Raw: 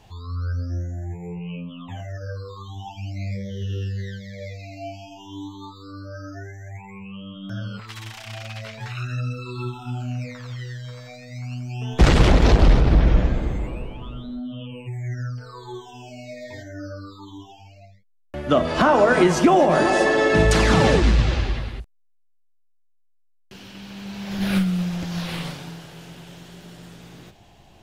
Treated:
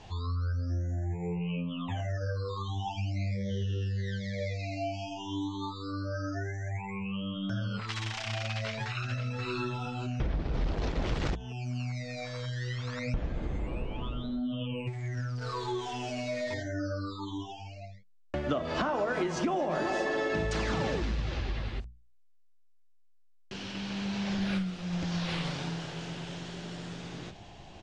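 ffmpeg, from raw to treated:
-filter_complex "[0:a]asplit=2[a][b];[b]afade=t=in:st=8.49:d=0.01,afade=t=out:st=9.53:d=0.01,aecho=0:1:530|1060|1590:0.530884|0.0796327|0.0119449[c];[a][c]amix=inputs=2:normalize=0,asettb=1/sr,asplit=3[d][e][f];[d]atrim=end=14.874[g];[e]atrim=start=14.87:end=16.54,asetpts=PTS-STARTPTS,afade=t=in:d=0.004:c=qsin,afade=t=out:st=1.666:d=0.004:c=qsin,aeval=exprs='val(0)+0.5*0.00891*sgn(val(0))':c=same[h];[f]atrim=start=16.536[i];[g][h]acrossfade=d=0.004:c1=hsin:c2=qsin[j];[j][i]acrossfade=d=0.004:c1=qsin:c2=hsin,asplit=3[k][l][m];[k]atrim=end=10.202[n];[l]atrim=start=10.198:end=13.142,asetpts=PTS-STARTPTS,areverse[o];[m]atrim=start=13.138[p];[n][o]acrossfade=d=0.004:c1=hsin:c2=hsin[q];[q][p]acrossfade=d=0.004:c1=hsin:c2=hsin,acompressor=threshold=-32dB:ratio=5,lowpass=f=7.1k:w=0.5412,lowpass=f=7.1k:w=1.3066,bandreject=f=60:t=h:w=6,bandreject=f=120:t=h:w=6,bandreject=f=180:t=h:w=6,bandreject=f=240:t=h:w=6,volume=2.5dB"

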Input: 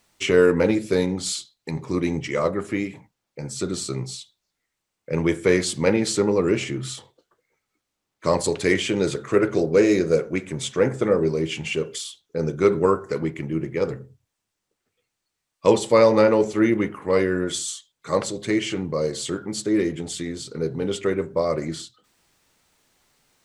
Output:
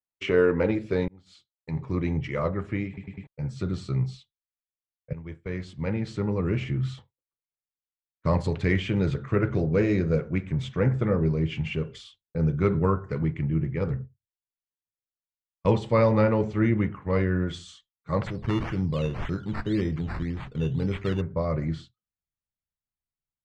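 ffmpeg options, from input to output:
-filter_complex "[0:a]asplit=3[a][b][c];[a]afade=t=out:st=18.26:d=0.02[d];[b]acrusher=samples=11:mix=1:aa=0.000001:lfo=1:lforange=6.6:lforate=1.9,afade=t=in:st=18.26:d=0.02,afade=t=out:st=21.2:d=0.02[e];[c]afade=t=in:st=21.2:d=0.02[f];[d][e][f]amix=inputs=3:normalize=0,asplit=7[g][h][i][j][k][l][m];[g]atrim=end=1.08,asetpts=PTS-STARTPTS,afade=t=out:st=1.076:d=0.004:c=hsin[n];[h]atrim=start=1.08:end=2.972,asetpts=PTS-STARTPTS,afade=t=in:d=0.73[o];[i]atrim=start=2.868:end=2.972[p];[j]atrim=start=2.868:end=2.972[q];[k]atrim=start=2.868:end=2.972[r];[l]atrim=start=3.268:end=5.13,asetpts=PTS-STARTPTS,afade=t=out:st=1.858:d=0.004:c=hsin:silence=0.112202[s];[m]atrim=start=5.13,asetpts=PTS-STARTPTS,afade=t=in:d=1.81:silence=0.112202[t];[n][o]concat=n=2:v=0:a=1[u];[u][p]acrossfade=d=0.004:c1=hsin:c2=hsin[v];[v][q]acrossfade=d=0.004:c1=hsin:c2=hsin[w];[w][r]acrossfade=d=0.004:c1=hsin:c2=hsin[x];[s][t]concat=n=2:v=0:a=1[y];[x][y]acrossfade=d=0.004:c1=hsin:c2=hsin,agate=range=-33dB:threshold=-33dB:ratio=3:detection=peak,lowpass=2.7k,asubboost=boost=7.5:cutoff=130,volume=-4dB"

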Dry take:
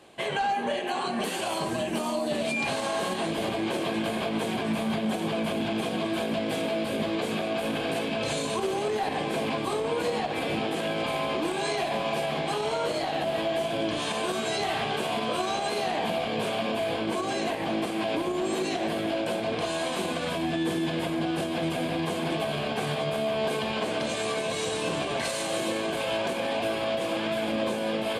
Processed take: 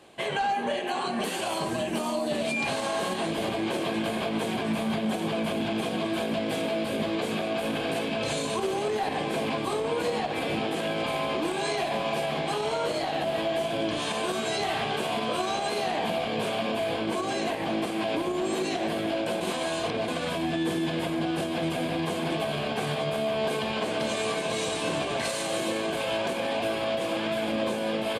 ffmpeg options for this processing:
-filter_complex "[0:a]asplit=2[a][b];[b]afade=t=in:st=23.49:d=0.01,afade=t=out:st=24.47:d=0.01,aecho=0:1:500|1000|1500|2000|2500:0.421697|0.168679|0.0674714|0.0269886|0.0107954[c];[a][c]amix=inputs=2:normalize=0,asplit=3[d][e][f];[d]atrim=end=19.412[g];[e]atrim=start=19.408:end=20.082,asetpts=PTS-STARTPTS,areverse[h];[f]atrim=start=20.078[i];[g][h]acrossfade=d=0.004:c1=hsin:c2=hsin[j];[j][i]acrossfade=d=0.004:c1=hsin:c2=hsin"

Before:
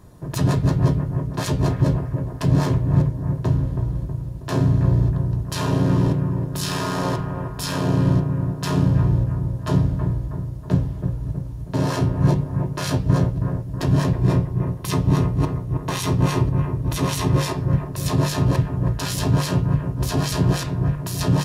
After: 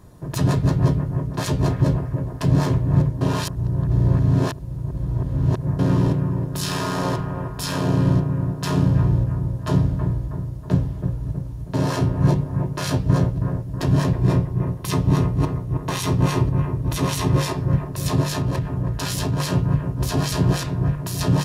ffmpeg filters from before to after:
-filter_complex "[0:a]asettb=1/sr,asplit=3[a][b][c];[a]atrim=end=18.214[d];[b]atrim=start=18.21:end=19.4,asetpts=PTS-STARTPTS,afade=t=in:d=0.004:c=qsin,afade=t=out:st=1.186:d=0.004:c=qsin,acompressor=threshold=-19dB:ratio=3:attack=3.2:release=140:knee=1:detection=peak[e];[c]atrim=start=19.396[f];[d][e]acrossfade=d=0.004:c1=hsin:c2=qsin[g];[g][f]acrossfade=d=0.004:c1=qsin:c2=hsin,asplit=3[h][i][j];[h]atrim=end=3.212[k];[i]atrim=start=3.208:end=5.792,asetpts=PTS-STARTPTS,areverse[l];[j]atrim=start=5.788[m];[k][l]acrossfade=d=0.004:c1=hsin:c2=hsin[n];[n][m]acrossfade=d=0.004:c1=hsin:c2=hsin"

